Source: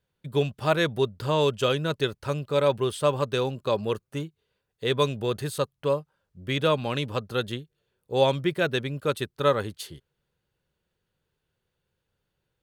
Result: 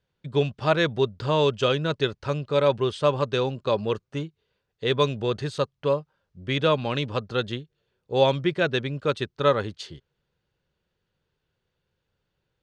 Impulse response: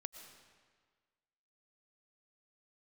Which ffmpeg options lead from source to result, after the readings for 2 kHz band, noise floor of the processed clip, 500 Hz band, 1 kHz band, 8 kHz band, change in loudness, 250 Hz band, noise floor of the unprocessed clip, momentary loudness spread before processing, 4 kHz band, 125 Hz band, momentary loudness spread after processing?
+1.5 dB, -79 dBFS, +1.5 dB, +1.5 dB, no reading, +1.5 dB, +1.5 dB, -81 dBFS, 8 LU, +1.5 dB, +1.5 dB, 8 LU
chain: -af "lowpass=f=6300:w=0.5412,lowpass=f=6300:w=1.3066,volume=1.19"

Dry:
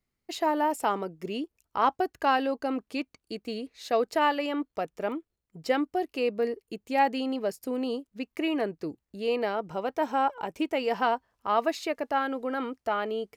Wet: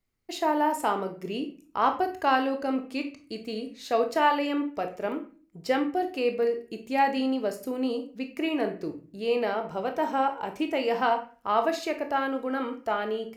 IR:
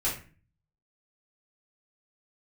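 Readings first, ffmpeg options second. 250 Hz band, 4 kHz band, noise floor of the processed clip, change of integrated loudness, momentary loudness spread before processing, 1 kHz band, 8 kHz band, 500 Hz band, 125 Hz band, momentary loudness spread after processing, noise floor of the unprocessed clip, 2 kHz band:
+2.0 dB, +0.5 dB, -58 dBFS, +1.5 dB, 10 LU, +1.0 dB, +1.0 dB, +1.5 dB, +1.0 dB, 10 LU, -84 dBFS, +1.5 dB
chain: -filter_complex "[0:a]asplit=2[s0][s1];[1:a]atrim=start_sample=2205,adelay=19[s2];[s1][s2]afir=irnorm=-1:irlink=0,volume=0.224[s3];[s0][s3]amix=inputs=2:normalize=0"

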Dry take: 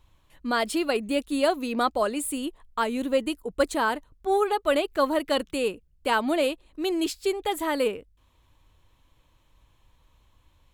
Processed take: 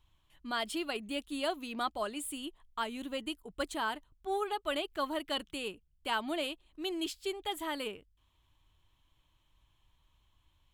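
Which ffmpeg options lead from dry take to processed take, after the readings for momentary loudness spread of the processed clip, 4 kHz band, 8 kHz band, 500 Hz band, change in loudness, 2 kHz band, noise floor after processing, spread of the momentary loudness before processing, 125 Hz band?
7 LU, -4.5 dB, -9.0 dB, -13.0 dB, -10.0 dB, -8.5 dB, -72 dBFS, 7 LU, no reading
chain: -af "equalizer=f=250:t=o:w=0.33:g=-4,equalizer=f=500:t=o:w=0.33:g=-10,equalizer=f=3150:t=o:w=0.33:g=7,volume=0.355"

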